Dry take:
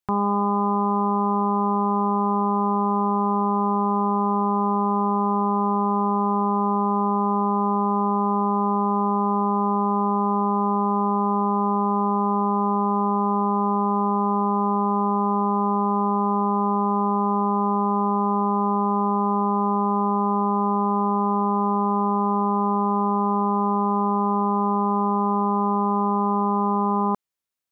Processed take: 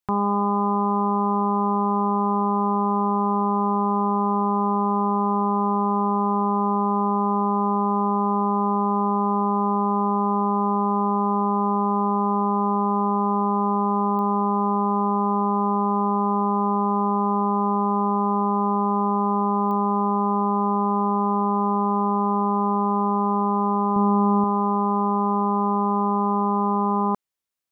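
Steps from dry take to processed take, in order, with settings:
0:23.96–0:24.44: low-shelf EQ 210 Hz +9.5 dB
digital clicks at 0:14.19/0:19.71, −24 dBFS

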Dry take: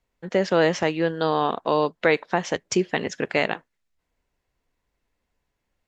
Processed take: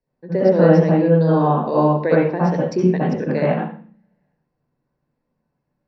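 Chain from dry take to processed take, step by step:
high-shelf EQ 4,000 Hz −11 dB
convolution reverb RT60 0.45 s, pre-delay 60 ms, DRR −7 dB
level −13 dB

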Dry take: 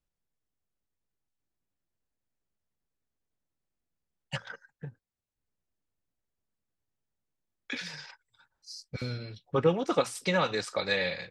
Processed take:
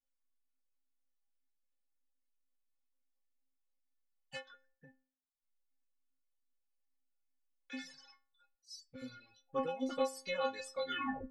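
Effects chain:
turntable brake at the end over 0.48 s
stiff-string resonator 260 Hz, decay 0.54 s, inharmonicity 0.008
reverb reduction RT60 0.86 s
level +8 dB

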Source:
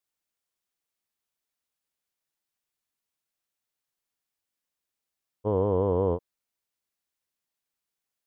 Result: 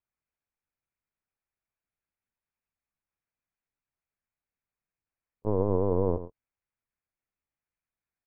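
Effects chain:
parametric band 150 Hz +7.5 dB 0.93 octaves
single-tap delay 110 ms −12 dB
linear-prediction vocoder at 8 kHz pitch kept
Chebyshev low-pass filter 2,500 Hz, order 5
level −2 dB

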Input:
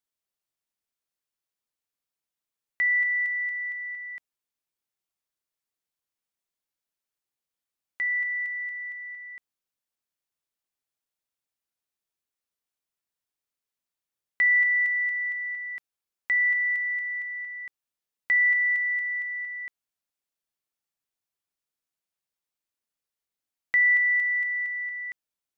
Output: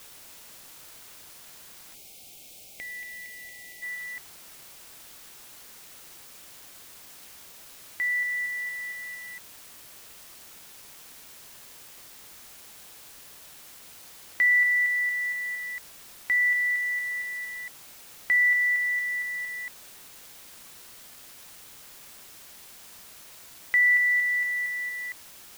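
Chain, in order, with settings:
bit-depth reduction 8 bits, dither triangular
gain on a spectral selection 0:01.94–0:03.82, 850–2,100 Hz −16 dB

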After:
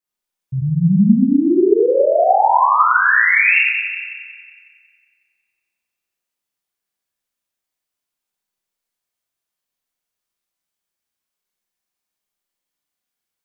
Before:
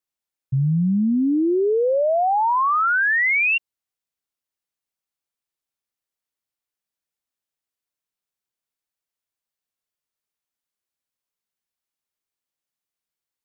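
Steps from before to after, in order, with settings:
0:02.68–0:03.38: parametric band 290 Hz −12.5 dB 0.94 octaves
echo with a time of its own for lows and highs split 2,000 Hz, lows 94 ms, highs 183 ms, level −6 dB
four-comb reverb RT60 0.86 s, combs from 31 ms, DRR −5.5 dB
level −2 dB

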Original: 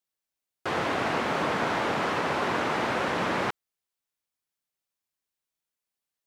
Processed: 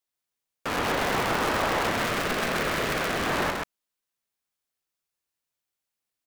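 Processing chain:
sub-harmonics by changed cycles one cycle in 2, inverted
0:01.90–0:03.26: parametric band 880 Hz −6.5 dB 0.67 octaves
single-tap delay 131 ms −3 dB

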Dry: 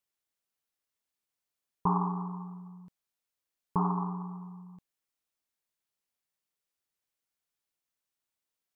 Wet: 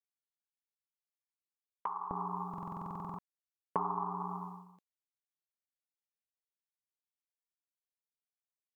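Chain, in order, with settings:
downward expander −41 dBFS
downward compressor 16 to 1, threshold −39 dBFS, peak gain reduction 17 dB
high-pass filter 1,200 Hz 12 dB per octave, from 0:02.11 380 Hz
buffer that repeats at 0:02.49, samples 2,048, times 14
level +12 dB

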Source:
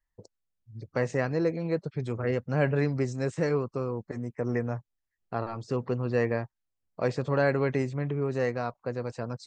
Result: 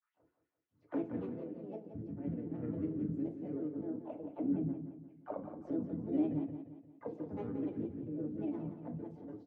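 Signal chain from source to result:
parametric band 2,700 Hz +5.5 dB 1 octave
reversed playback
upward compression, threshold −38 dBFS
reversed playback
envelope filter 240–2,200 Hz, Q 6.3, down, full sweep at −28 dBFS
pitch vibrato 0.31 Hz 64 cents
granular cloud, spray 36 ms, pitch spread up and down by 7 semitones
pitch-shifted copies added −5 semitones −10 dB, +4 semitones −9 dB
on a send: repeating echo 175 ms, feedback 42%, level −9 dB
on the sum: feedback delay network reverb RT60 0.31 s, low-frequency decay 0.9×, high-frequency decay 0.85×, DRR 3 dB
every ending faded ahead of time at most 290 dB per second
level −1.5 dB

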